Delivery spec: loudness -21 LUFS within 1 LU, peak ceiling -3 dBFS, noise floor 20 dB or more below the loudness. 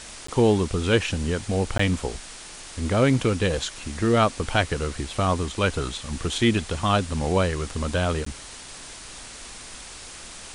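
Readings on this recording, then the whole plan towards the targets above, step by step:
dropouts 3; longest dropout 14 ms; noise floor -41 dBFS; noise floor target -44 dBFS; loudness -24.0 LUFS; peak level -5.0 dBFS; loudness target -21.0 LUFS
-> interpolate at 0.27/1.78/8.25 s, 14 ms; noise reduction 6 dB, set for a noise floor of -41 dBFS; trim +3 dB; peak limiter -3 dBFS

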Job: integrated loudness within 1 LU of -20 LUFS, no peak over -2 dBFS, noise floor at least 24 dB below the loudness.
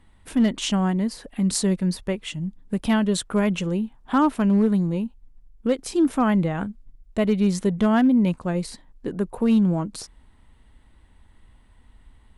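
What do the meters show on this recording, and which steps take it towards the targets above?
clipped samples 0.3%; clipping level -12.5 dBFS; loudness -23.0 LUFS; peak level -12.5 dBFS; loudness target -20.0 LUFS
-> clip repair -12.5 dBFS; trim +3 dB

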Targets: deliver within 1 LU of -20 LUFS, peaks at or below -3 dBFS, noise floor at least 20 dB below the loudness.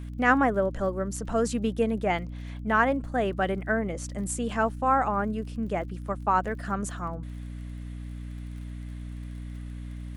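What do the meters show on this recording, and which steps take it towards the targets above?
tick rate 42 per s; hum 60 Hz; highest harmonic 300 Hz; hum level -35 dBFS; loudness -27.5 LUFS; peak level -9.0 dBFS; loudness target -20.0 LUFS
-> de-click; hum notches 60/120/180/240/300 Hz; trim +7.5 dB; peak limiter -3 dBFS

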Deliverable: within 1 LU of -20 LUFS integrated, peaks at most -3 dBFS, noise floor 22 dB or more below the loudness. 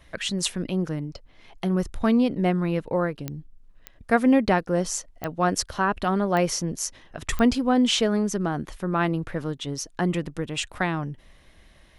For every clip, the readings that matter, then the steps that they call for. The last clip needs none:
clicks found 5; loudness -25.0 LUFS; peak level -6.0 dBFS; loudness target -20.0 LUFS
-> de-click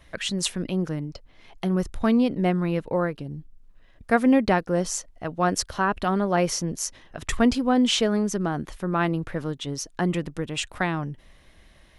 clicks found 0; loudness -25.0 LUFS; peak level -6.0 dBFS; loudness target -20.0 LUFS
-> trim +5 dB; peak limiter -3 dBFS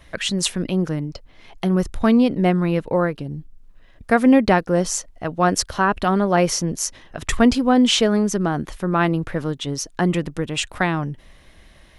loudness -20.0 LUFS; peak level -3.0 dBFS; noise floor -49 dBFS

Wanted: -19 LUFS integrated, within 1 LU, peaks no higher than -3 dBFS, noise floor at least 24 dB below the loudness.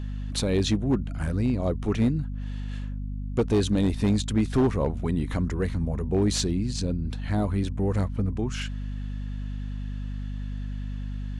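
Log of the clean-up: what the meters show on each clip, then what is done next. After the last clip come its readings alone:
clipped samples 1.1%; clipping level -16.5 dBFS; hum 50 Hz; highest harmonic 250 Hz; hum level -30 dBFS; loudness -27.5 LUFS; peak level -16.5 dBFS; loudness target -19.0 LUFS
-> clip repair -16.5 dBFS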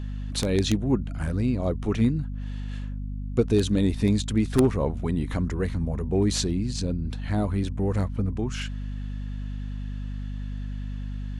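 clipped samples 0.0%; hum 50 Hz; highest harmonic 250 Hz; hum level -29 dBFS
-> hum notches 50/100/150/200/250 Hz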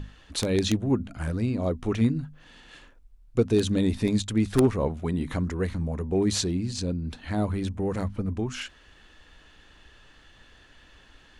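hum not found; loudness -27.0 LUFS; peak level -7.5 dBFS; loudness target -19.0 LUFS
-> trim +8 dB; peak limiter -3 dBFS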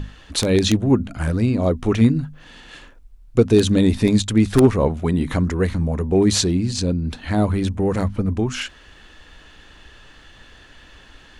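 loudness -19.0 LUFS; peak level -3.0 dBFS; noise floor -47 dBFS

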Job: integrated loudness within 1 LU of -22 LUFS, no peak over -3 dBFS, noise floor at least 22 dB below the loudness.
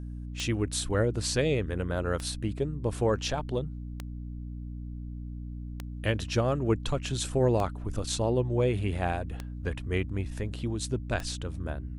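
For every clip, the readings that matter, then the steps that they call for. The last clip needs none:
clicks found 7; hum 60 Hz; highest harmonic 300 Hz; hum level -35 dBFS; loudness -31.0 LUFS; peak level -13.0 dBFS; loudness target -22.0 LUFS
-> de-click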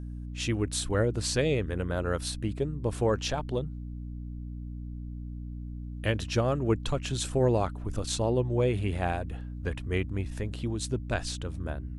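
clicks found 0; hum 60 Hz; highest harmonic 300 Hz; hum level -35 dBFS
-> de-hum 60 Hz, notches 5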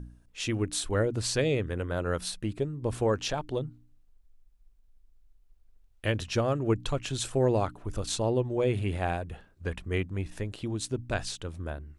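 hum not found; loudness -30.5 LUFS; peak level -14.0 dBFS; loudness target -22.0 LUFS
-> trim +8.5 dB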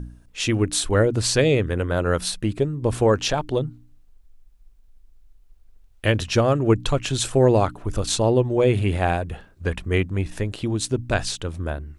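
loudness -22.0 LUFS; peak level -5.5 dBFS; noise floor -53 dBFS

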